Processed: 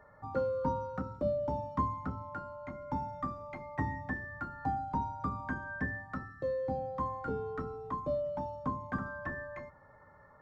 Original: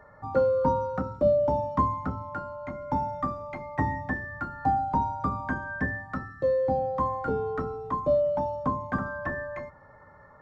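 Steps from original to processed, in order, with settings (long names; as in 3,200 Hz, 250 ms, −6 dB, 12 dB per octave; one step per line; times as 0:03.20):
dynamic equaliser 650 Hz, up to −5 dB, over −38 dBFS, Q 1.4
level −6 dB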